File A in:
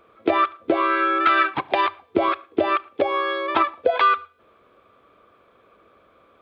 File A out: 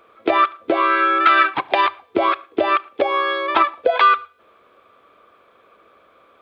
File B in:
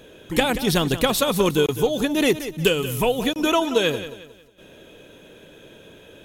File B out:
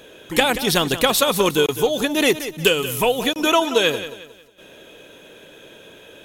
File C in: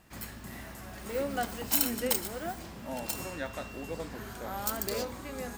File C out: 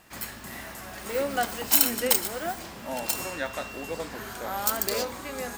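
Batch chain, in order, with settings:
low-shelf EQ 300 Hz −10 dB
normalise the peak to −2 dBFS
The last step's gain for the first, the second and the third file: +4.5, +4.5, +7.0 decibels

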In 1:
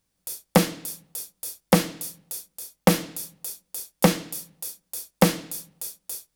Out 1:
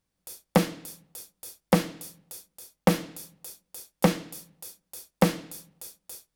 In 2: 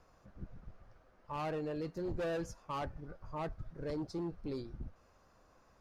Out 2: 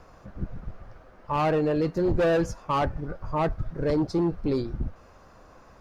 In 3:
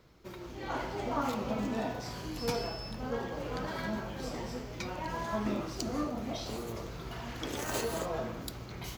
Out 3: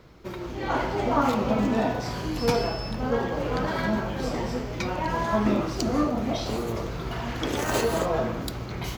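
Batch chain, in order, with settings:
high-shelf EQ 4,100 Hz −6.5 dB
loudness normalisation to −27 LKFS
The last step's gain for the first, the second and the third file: −3.0, +14.5, +10.0 decibels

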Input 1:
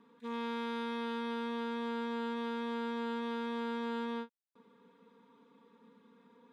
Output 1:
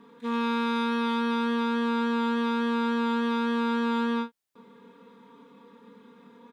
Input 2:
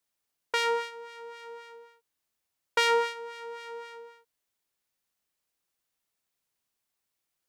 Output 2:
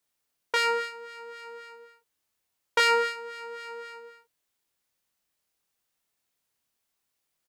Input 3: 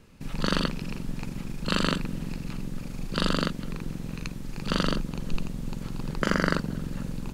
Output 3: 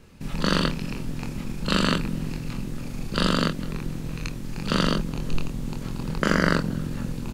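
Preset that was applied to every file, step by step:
double-tracking delay 25 ms −5 dB
loudness normalisation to −27 LKFS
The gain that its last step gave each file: +9.5, +1.5, +2.5 decibels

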